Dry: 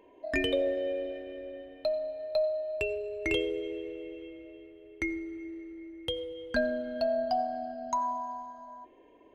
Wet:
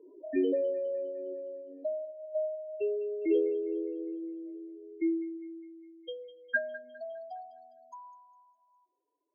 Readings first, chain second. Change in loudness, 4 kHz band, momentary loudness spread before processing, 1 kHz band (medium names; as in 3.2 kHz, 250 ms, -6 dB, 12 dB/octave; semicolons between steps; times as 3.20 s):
-1.5 dB, -17.0 dB, 16 LU, -15.5 dB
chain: spectral contrast enhancement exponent 2.8; two-band feedback delay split 400 Hz, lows 89 ms, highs 204 ms, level -16 dB; band-pass sweep 350 Hz -> 7.8 kHz, 5.08–8.25 s; trim +6.5 dB